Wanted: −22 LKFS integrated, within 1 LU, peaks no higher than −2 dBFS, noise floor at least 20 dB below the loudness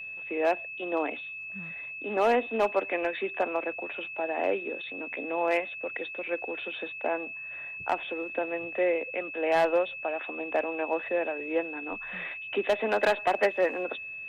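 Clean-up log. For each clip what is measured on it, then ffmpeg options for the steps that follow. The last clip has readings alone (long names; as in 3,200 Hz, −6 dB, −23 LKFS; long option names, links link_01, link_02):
interfering tone 2,600 Hz; level of the tone −37 dBFS; integrated loudness −30.0 LKFS; sample peak −14.5 dBFS; target loudness −22.0 LKFS
→ -af "bandreject=frequency=2600:width=30"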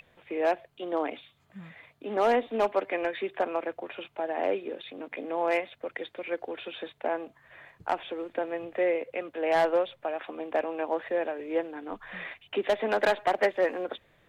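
interfering tone none found; integrated loudness −30.5 LKFS; sample peak −15.0 dBFS; target loudness −22.0 LKFS
→ -af "volume=8.5dB"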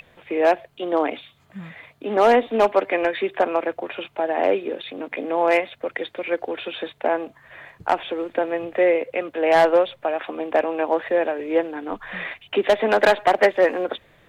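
integrated loudness −22.0 LKFS; sample peak −6.5 dBFS; background noise floor −58 dBFS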